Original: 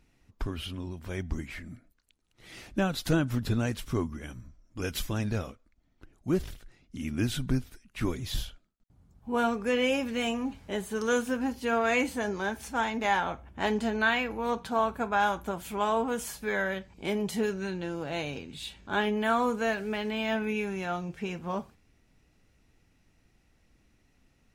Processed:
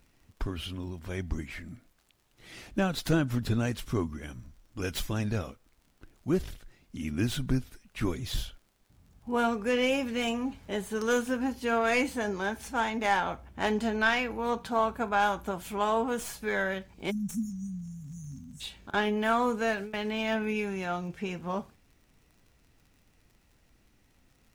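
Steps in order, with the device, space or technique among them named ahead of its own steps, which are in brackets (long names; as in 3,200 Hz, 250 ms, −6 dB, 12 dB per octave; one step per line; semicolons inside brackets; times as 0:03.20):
0:17.11–0:18.61: time-frequency box erased 260–5,400 Hz
0:18.90–0:20.09: noise gate with hold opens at −22 dBFS
record under a worn stylus (stylus tracing distortion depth 0.041 ms; surface crackle 47 per second −51 dBFS; pink noise bed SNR 41 dB)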